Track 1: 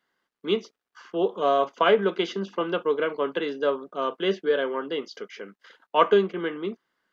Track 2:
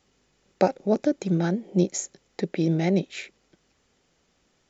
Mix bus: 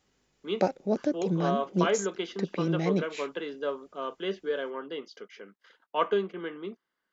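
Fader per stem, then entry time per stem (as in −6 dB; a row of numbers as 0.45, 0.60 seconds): −7.5, −5.0 decibels; 0.00, 0.00 seconds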